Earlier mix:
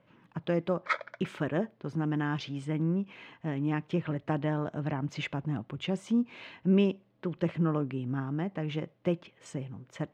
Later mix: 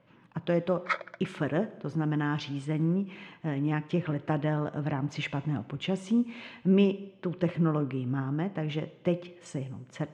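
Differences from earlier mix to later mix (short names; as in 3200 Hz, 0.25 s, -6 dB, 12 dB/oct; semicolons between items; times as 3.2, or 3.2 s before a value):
speech: add brick-wall FIR low-pass 12000 Hz; reverb: on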